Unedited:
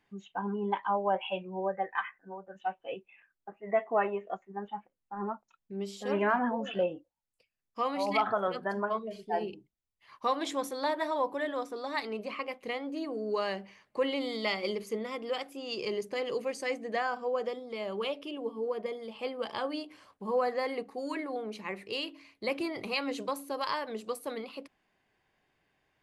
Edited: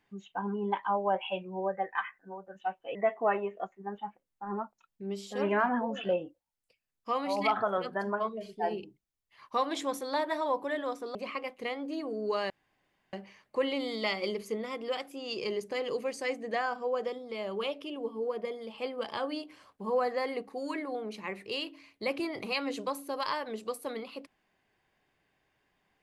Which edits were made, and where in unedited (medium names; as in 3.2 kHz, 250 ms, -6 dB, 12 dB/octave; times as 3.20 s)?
2.95–3.65 s: delete
11.85–12.19 s: delete
13.54 s: insert room tone 0.63 s